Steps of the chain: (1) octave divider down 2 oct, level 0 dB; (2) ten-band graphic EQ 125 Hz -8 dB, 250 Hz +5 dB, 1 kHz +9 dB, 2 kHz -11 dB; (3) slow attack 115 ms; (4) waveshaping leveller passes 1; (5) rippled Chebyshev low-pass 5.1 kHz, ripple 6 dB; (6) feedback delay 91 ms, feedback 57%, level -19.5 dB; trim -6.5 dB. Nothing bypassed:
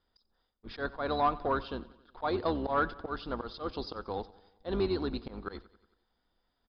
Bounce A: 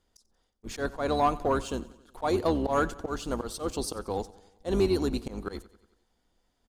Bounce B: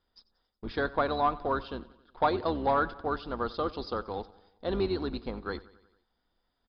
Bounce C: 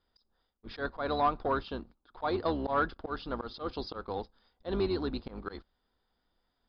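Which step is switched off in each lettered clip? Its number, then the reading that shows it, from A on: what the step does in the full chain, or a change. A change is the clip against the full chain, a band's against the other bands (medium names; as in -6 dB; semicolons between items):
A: 5, 2 kHz band -4.0 dB; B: 3, 1 kHz band +1.5 dB; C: 6, echo-to-direct -18.0 dB to none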